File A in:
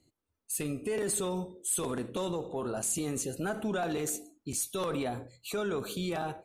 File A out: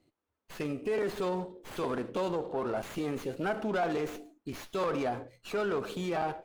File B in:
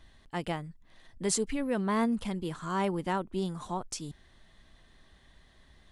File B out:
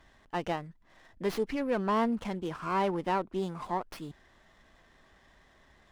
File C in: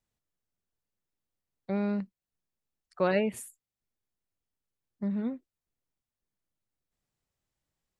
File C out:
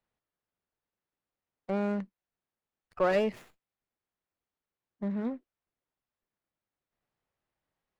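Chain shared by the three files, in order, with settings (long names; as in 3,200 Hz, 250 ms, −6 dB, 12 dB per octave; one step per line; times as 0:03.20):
mid-hump overdrive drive 12 dB, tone 1,400 Hz, clips at −14.5 dBFS
windowed peak hold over 5 samples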